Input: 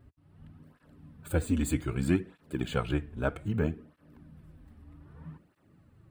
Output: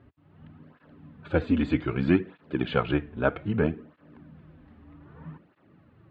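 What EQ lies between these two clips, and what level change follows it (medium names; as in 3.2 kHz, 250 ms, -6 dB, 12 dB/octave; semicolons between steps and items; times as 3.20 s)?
high-pass 210 Hz 6 dB/octave; low-pass 4.1 kHz 24 dB/octave; distance through air 130 m; +7.5 dB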